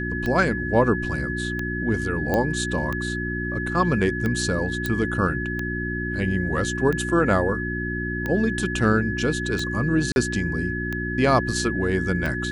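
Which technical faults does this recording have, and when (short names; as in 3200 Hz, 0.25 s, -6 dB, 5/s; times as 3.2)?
hum 60 Hz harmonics 6 -29 dBFS
tick 45 rpm -15 dBFS
tone 1700 Hz -29 dBFS
2.34 pop -10 dBFS
4.86 pop -11 dBFS
10.12–10.16 gap 41 ms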